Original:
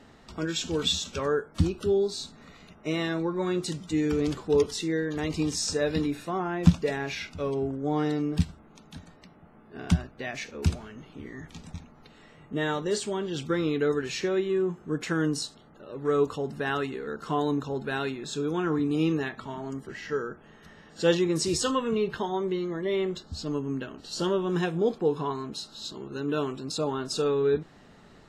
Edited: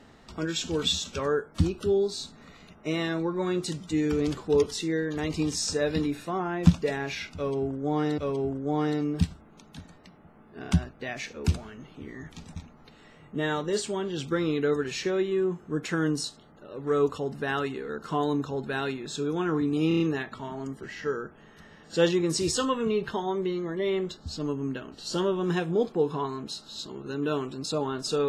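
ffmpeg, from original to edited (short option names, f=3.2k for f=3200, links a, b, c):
-filter_complex "[0:a]asplit=6[a][b][c][d][e][f];[a]atrim=end=8.182[g];[b]atrim=start=7.358:end=19.092[h];[c]atrim=start=19.058:end=19.092[i];[d]atrim=start=19.058:end=19.092[j];[e]atrim=start=19.058:end=19.092[k];[f]atrim=start=19.058[l];[g][h]acrossfade=d=0.004:c1=hsin:c2=hsin[m];[m][i]acrossfade=d=0.004:c1=hsin:c2=hsin[n];[n][j]acrossfade=d=0.004:c1=hsin:c2=hsin[o];[o][k]acrossfade=d=0.004:c1=hsin:c2=hsin[p];[p][l]acrossfade=d=0.004:c1=hsin:c2=hsin"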